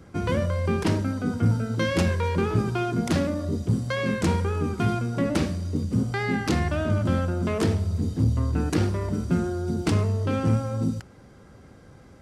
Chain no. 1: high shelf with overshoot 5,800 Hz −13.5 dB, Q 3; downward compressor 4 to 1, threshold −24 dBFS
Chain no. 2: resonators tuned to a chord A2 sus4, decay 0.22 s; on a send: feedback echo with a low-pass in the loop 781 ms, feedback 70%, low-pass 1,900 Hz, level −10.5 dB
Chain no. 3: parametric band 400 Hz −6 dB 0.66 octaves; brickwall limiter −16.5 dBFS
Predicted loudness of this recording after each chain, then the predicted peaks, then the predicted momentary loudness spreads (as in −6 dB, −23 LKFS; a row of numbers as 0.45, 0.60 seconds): −29.0, −37.0, −27.5 LKFS; −13.5, −20.5, −16.5 dBFS; 2, 6, 3 LU